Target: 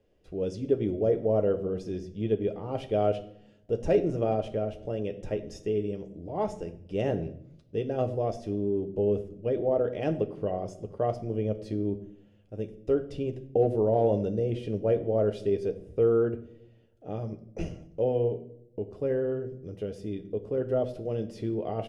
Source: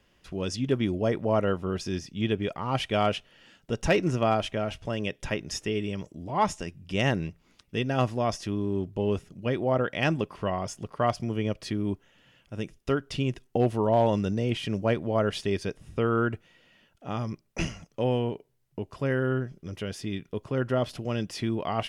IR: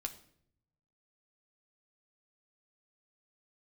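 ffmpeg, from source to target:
-filter_complex "[0:a]firequalizer=gain_entry='entry(250,0);entry(490,9);entry(1000,-11)':delay=0.05:min_phase=1[a];[1:a]atrim=start_sample=2205[b];[a][b]afir=irnorm=-1:irlink=0,volume=-2.5dB"

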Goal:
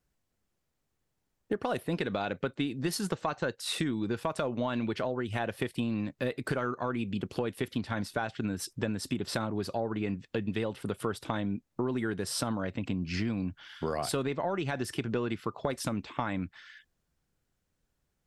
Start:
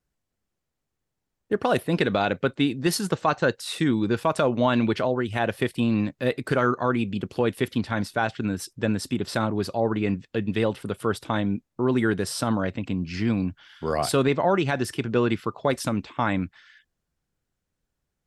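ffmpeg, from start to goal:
-af "acompressor=threshold=-30dB:ratio=6,aeval=exprs='0.178*(cos(1*acos(clip(val(0)/0.178,-1,1)))-cos(1*PI/2))+0.0126*(cos(2*acos(clip(val(0)/0.178,-1,1)))-cos(2*PI/2))':c=same,volume=1.5dB"

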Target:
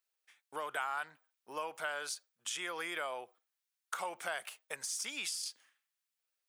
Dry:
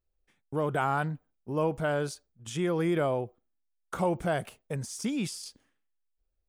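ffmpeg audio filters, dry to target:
-af "highpass=1.3k,acompressor=threshold=-45dB:ratio=2.5,volume=7dB"

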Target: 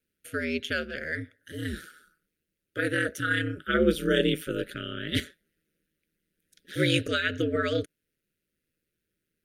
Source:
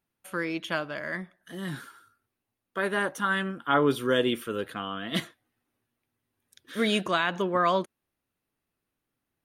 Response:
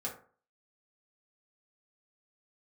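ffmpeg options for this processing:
-af "aeval=exprs='val(0)*sin(2*PI*80*n/s)':c=same,asuperstop=centerf=900:order=8:qfactor=1.1,volume=4.5dB"

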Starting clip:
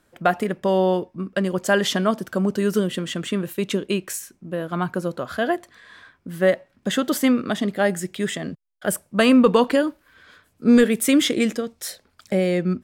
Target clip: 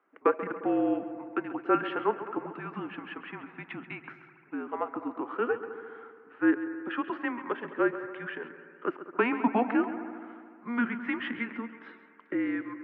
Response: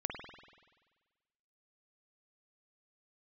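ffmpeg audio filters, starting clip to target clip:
-filter_complex "[0:a]highpass=f=340:t=q:w=0.5412,highpass=f=340:t=q:w=1.307,lowpass=f=2.5k:t=q:w=0.5176,lowpass=f=2.5k:t=q:w=0.7071,lowpass=f=2.5k:t=q:w=1.932,afreqshift=-240,highpass=f=260:w=0.5412,highpass=f=260:w=1.3066,asplit=2[a][b];[1:a]atrim=start_sample=2205,asetrate=29988,aresample=44100,adelay=135[c];[b][c]afir=irnorm=-1:irlink=0,volume=-14dB[d];[a][d]amix=inputs=2:normalize=0,volume=-4.5dB"

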